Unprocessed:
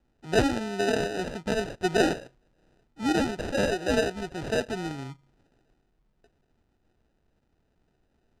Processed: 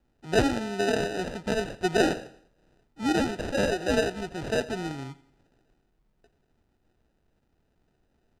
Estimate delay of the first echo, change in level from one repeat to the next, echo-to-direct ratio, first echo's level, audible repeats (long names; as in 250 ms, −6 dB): 86 ms, −6.5 dB, −18.0 dB, −19.0 dB, 3